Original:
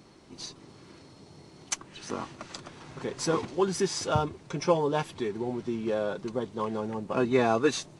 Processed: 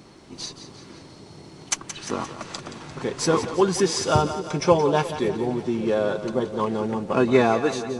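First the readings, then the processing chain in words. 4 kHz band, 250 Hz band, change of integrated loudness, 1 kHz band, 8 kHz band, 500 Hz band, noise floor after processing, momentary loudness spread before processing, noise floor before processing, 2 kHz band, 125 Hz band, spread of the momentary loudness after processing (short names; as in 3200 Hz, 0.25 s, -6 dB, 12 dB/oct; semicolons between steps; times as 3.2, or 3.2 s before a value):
+6.0 dB, +6.5 dB, +6.5 dB, +6.5 dB, +6.5 dB, +6.5 dB, -46 dBFS, 17 LU, -54 dBFS, +6.0 dB, +6.5 dB, 16 LU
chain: ending faded out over 0.62 s; split-band echo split 440 Hz, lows 0.559 s, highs 0.174 s, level -11 dB; gain +6.5 dB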